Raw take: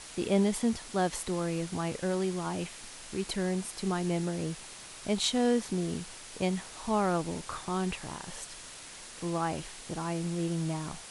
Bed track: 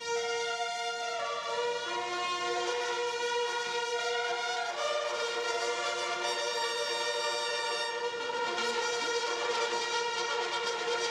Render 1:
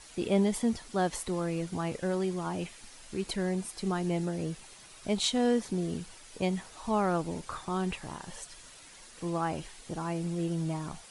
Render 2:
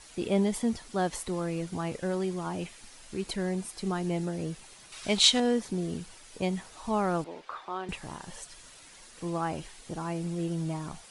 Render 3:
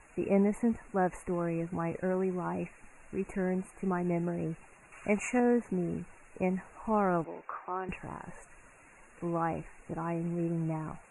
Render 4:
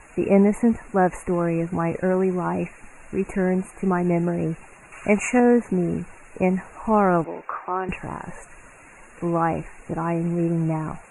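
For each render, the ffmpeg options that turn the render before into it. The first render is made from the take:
ffmpeg -i in.wav -af "afftdn=noise_reduction=8:noise_floor=-47" out.wav
ffmpeg -i in.wav -filter_complex "[0:a]asettb=1/sr,asplit=3[link_01][link_02][link_03];[link_01]atrim=end=4.924[link_04];[link_02]atrim=start=4.92:end=5.4,asetpts=PTS-STARTPTS,afade=type=in:duration=0.004:curve=qsin,afade=type=out:start_time=0.476:duration=0.004:curve=qsin,equalizer=frequency=3300:width=0.32:gain=10[link_05];[link_03]atrim=start=5.396[link_06];[link_04][link_05]acrossfade=duration=0.004:curve1=hsin:curve2=qsin[link_07];[link_07][link_06]acrossfade=duration=0.004:curve1=qsin:curve2=hsin,asettb=1/sr,asplit=3[link_08][link_09][link_10];[link_08]atrim=end=7.244[link_11];[link_09]atrim=start=7.24:end=7.89,asetpts=PTS-STARTPTS,afade=type=in:duration=0.004:curve=qsin,afade=type=out:start_time=0.646:duration=0.004:curve=qsin,acrossover=split=350 4200:gain=0.0708 1 0.0794[link_12][link_13][link_14];[link_12][link_13][link_14]amix=inputs=3:normalize=0[link_15];[link_10]atrim=start=7.886[link_16];[link_11][link_15]acrossfade=duration=0.004:curve1=hsin:curve2=qsin[link_17];[link_17][link_16]acrossfade=duration=0.004:curve1=qsin:curve2=hsin" out.wav
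ffmpeg -i in.wav -af "afftfilt=real='re*(1-between(b*sr/4096,2800,6300))':imag='im*(1-between(b*sr/4096,2800,6300))':win_size=4096:overlap=0.75,bass=frequency=250:gain=-1,treble=frequency=4000:gain=-14" out.wav
ffmpeg -i in.wav -af "volume=10dB" out.wav

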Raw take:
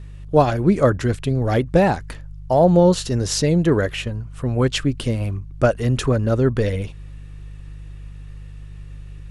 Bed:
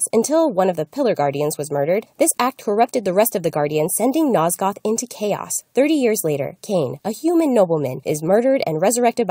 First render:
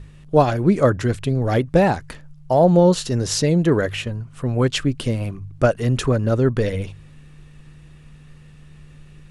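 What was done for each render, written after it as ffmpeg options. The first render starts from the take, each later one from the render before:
ffmpeg -i in.wav -af "bandreject=frequency=50:width_type=h:width=4,bandreject=frequency=100:width_type=h:width=4" out.wav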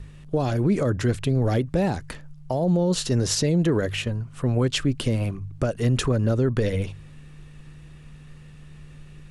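ffmpeg -i in.wav -filter_complex "[0:a]alimiter=limit=-13dB:level=0:latency=1:release=48,acrossover=split=470|3000[link_01][link_02][link_03];[link_02]acompressor=threshold=-29dB:ratio=6[link_04];[link_01][link_04][link_03]amix=inputs=3:normalize=0" out.wav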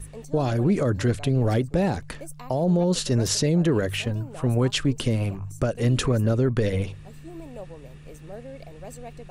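ffmpeg -i in.wav -i bed.wav -filter_complex "[1:a]volume=-25dB[link_01];[0:a][link_01]amix=inputs=2:normalize=0" out.wav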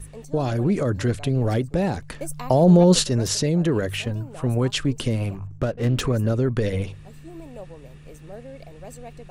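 ffmpeg -i in.wav -filter_complex "[0:a]asettb=1/sr,asplit=3[link_01][link_02][link_03];[link_01]atrim=end=5.474[link_04];[link_02]atrim=start=5.47:end=6.01,asetpts=PTS-STARTPTS,afade=type=in:duration=0.004:curve=qsin,afade=type=out:start_time=0.536:duration=0.004:curve=qsin,adynamicsmooth=sensitivity=8:basefreq=550[link_05];[link_03]atrim=start=6.006[link_06];[link_04][link_05]acrossfade=duration=0.004:curve1=hsin:curve2=qsin[link_07];[link_07][link_06]acrossfade=duration=0.004:curve1=qsin:curve2=hsin,asplit=3[link_08][link_09][link_10];[link_08]atrim=end=2.212[link_11];[link_09]atrim=start=2.208:end=3.042,asetpts=PTS-STARTPTS,volume=7.5dB[link_12];[link_10]atrim=start=3.038[link_13];[link_11][link_12]acrossfade=duration=0.004:curve1=hsin:curve2=hsin[link_14];[link_14][link_13]acrossfade=duration=0.004:curve1=hsin:curve2=hsin" out.wav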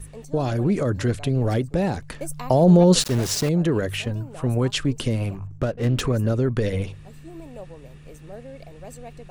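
ffmpeg -i in.wav -filter_complex "[0:a]asettb=1/sr,asplit=3[link_01][link_02][link_03];[link_01]atrim=end=3.004[link_04];[link_02]atrim=start=3:end=3.49,asetpts=PTS-STARTPTS,afade=type=in:duration=0.004:curve=qsin,afade=type=out:start_time=0.486:duration=0.004:curve=qsin,aeval=exprs='val(0)*gte(abs(val(0)),0.0447)':channel_layout=same[link_05];[link_03]atrim=start=3.486[link_06];[link_04][link_05]acrossfade=duration=0.004:curve1=hsin:curve2=qsin[link_07];[link_07][link_06]acrossfade=duration=0.004:curve1=qsin:curve2=hsin" out.wav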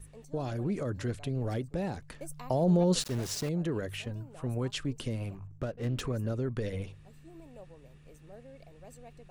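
ffmpeg -i in.wav -af "volume=-11dB" out.wav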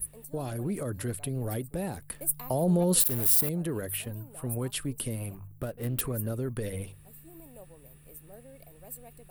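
ffmpeg -i in.wav -af "aexciter=amount=9:drive=9.3:freq=9300" out.wav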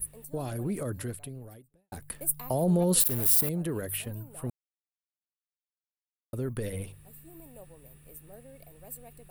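ffmpeg -i in.wav -filter_complex "[0:a]asplit=4[link_01][link_02][link_03][link_04];[link_01]atrim=end=1.92,asetpts=PTS-STARTPTS,afade=type=out:start_time=0.93:duration=0.99:curve=qua[link_05];[link_02]atrim=start=1.92:end=4.5,asetpts=PTS-STARTPTS,afade=type=in:duration=0.004:curve=hsin,afade=type=out:start_time=2.576:duration=0.004:curve=hsin[link_06];[link_03]atrim=start=4.5:end=6.33,asetpts=PTS-STARTPTS,volume=0[link_07];[link_04]atrim=start=6.33,asetpts=PTS-STARTPTS,afade=type=in:duration=0.004:curve=hsin[link_08];[link_05][link_06][link_07][link_08]concat=n=4:v=0:a=1" out.wav

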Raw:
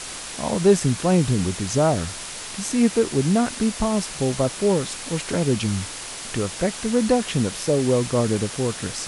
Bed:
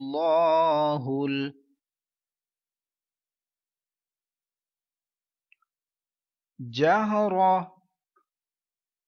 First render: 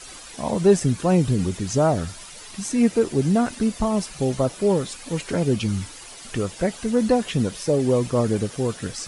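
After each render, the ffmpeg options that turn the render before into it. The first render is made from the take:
ffmpeg -i in.wav -af "afftdn=noise_reduction=11:noise_floor=-34" out.wav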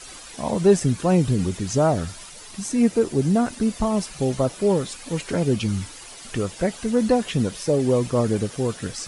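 ffmpeg -i in.wav -filter_complex "[0:a]asettb=1/sr,asplit=3[link_01][link_02][link_03];[link_01]atrim=end=2.294[link_04];[link_02]atrim=start=2.29:end=3.68,asetpts=PTS-STARTPTS,afade=type=in:duration=0.004:curve=qsin,afade=type=out:start_time=1.386:duration=0.004:curve=qsin,equalizer=frequency=2400:width_type=o:width=2:gain=-2.5[link_05];[link_03]atrim=start=3.676[link_06];[link_04][link_05]acrossfade=duration=0.004:curve1=hsin:curve2=qsin[link_07];[link_07][link_06]acrossfade=duration=0.004:curve1=qsin:curve2=hsin" out.wav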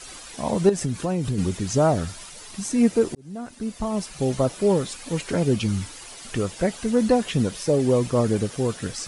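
ffmpeg -i in.wav -filter_complex "[0:a]asettb=1/sr,asplit=3[link_01][link_02][link_03];[link_01]atrim=end=0.694[link_04];[link_02]atrim=start=0.69:end=1.38,asetpts=PTS-STARTPTS,afade=type=in:duration=0.004:curve=qsin,afade=type=out:start_time=0.686:duration=0.004:curve=qsin,acompressor=threshold=-21dB:ratio=4:attack=3.2:release=140:knee=1:detection=peak[link_05];[link_03]atrim=start=1.376[link_06];[link_04][link_05]acrossfade=duration=0.004:curve1=hsin:curve2=qsin[link_07];[link_07][link_06]acrossfade=duration=0.004:curve1=qsin:curve2=hsin,asplit=2[link_08][link_09];[link_08]atrim=end=3.15,asetpts=PTS-STARTPTS,afade=type=out:start_time=3.146:duration=0.004:curve=hsin[link_10];[link_09]atrim=start=3.15,asetpts=PTS-STARTPTS,afade=type=in:duration=1.21[link_11];[link_10][link_11]concat=n=2:v=0:a=1" out.wav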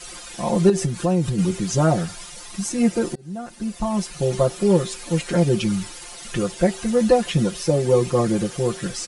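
ffmpeg -i in.wav -af "aecho=1:1:5.7:0.94,bandreject=frequency=383.3:width_type=h:width=4,bandreject=frequency=766.6:width_type=h:width=4,bandreject=frequency=1149.9:width_type=h:width=4,bandreject=frequency=1533.2:width_type=h:width=4,bandreject=frequency=1916.5:width_type=h:width=4,bandreject=frequency=2299.8:width_type=h:width=4,bandreject=frequency=2683.1:width_type=h:width=4,bandreject=frequency=3066.4:width_type=h:width=4,bandreject=frequency=3449.7:width_type=h:width=4,bandreject=frequency=3833:width_type=h:width=4,bandreject=frequency=4216.3:width_type=h:width=4,bandreject=frequency=4599.6:width_type=h:width=4,bandreject=frequency=4982.9:width_type=h:width=4,bandreject=frequency=5366.2:width_type=h:width=4" out.wav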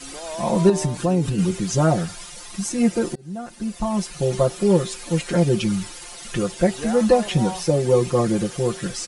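ffmpeg -i in.wav -i bed.wav -filter_complex "[1:a]volume=-10.5dB[link_01];[0:a][link_01]amix=inputs=2:normalize=0" out.wav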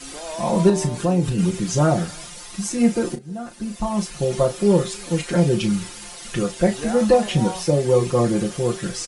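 ffmpeg -i in.wav -filter_complex "[0:a]asplit=2[link_01][link_02];[link_02]adelay=34,volume=-9dB[link_03];[link_01][link_03]amix=inputs=2:normalize=0,asplit=2[link_04][link_05];[link_05]adelay=314.9,volume=-29dB,highshelf=frequency=4000:gain=-7.08[link_06];[link_04][link_06]amix=inputs=2:normalize=0" out.wav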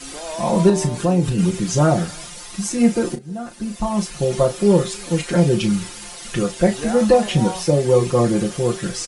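ffmpeg -i in.wav -af "volume=2dB,alimiter=limit=-3dB:level=0:latency=1" out.wav

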